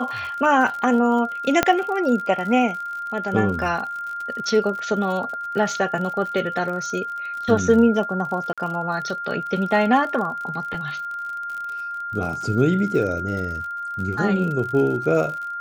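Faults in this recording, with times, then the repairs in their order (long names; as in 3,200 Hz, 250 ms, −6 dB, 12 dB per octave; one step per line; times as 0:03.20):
surface crackle 55 per second −30 dBFS
whistle 1,400 Hz −27 dBFS
0:01.63: click −2 dBFS
0:08.53–0:08.58: drop-out 46 ms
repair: click removal
notch filter 1,400 Hz, Q 30
repair the gap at 0:08.53, 46 ms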